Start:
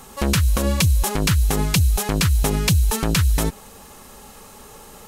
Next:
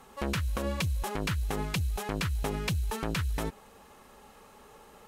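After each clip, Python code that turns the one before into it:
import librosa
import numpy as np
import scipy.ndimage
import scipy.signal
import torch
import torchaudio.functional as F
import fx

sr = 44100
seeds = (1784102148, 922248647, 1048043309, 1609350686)

y = fx.bass_treble(x, sr, bass_db=-5, treble_db=-10)
y = fx.cheby_harmonics(y, sr, harmonics=(6,), levels_db=(-34,), full_scale_db=-8.0)
y = F.gain(torch.from_numpy(y), -8.5).numpy()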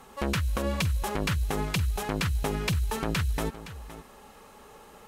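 y = x + 10.0 ** (-14.5 / 20.0) * np.pad(x, (int(516 * sr / 1000.0), 0))[:len(x)]
y = F.gain(torch.from_numpy(y), 3.0).numpy()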